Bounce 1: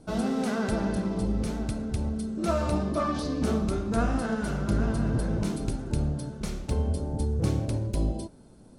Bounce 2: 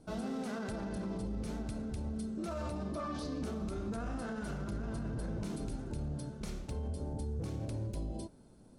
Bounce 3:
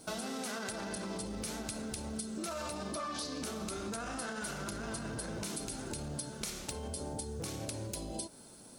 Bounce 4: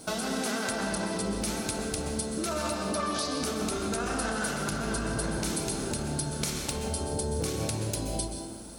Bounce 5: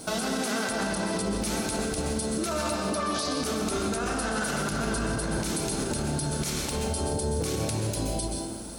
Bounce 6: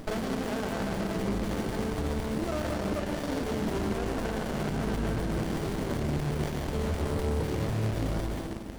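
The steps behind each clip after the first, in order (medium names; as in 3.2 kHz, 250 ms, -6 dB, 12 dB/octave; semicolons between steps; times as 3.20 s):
peak limiter -24 dBFS, peak gain reduction 11 dB; trim -6.5 dB
tilt EQ +3.5 dB/octave; compression, threshold -45 dBFS, peak gain reduction 8.5 dB; trim +9 dB
reverberation RT60 1.3 s, pre-delay 119 ms, DRR 4 dB; trim +7 dB
peak limiter -24.5 dBFS, peak gain reduction 11 dB; trim +5 dB
rattle on loud lows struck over -37 dBFS, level -24 dBFS; sliding maximum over 33 samples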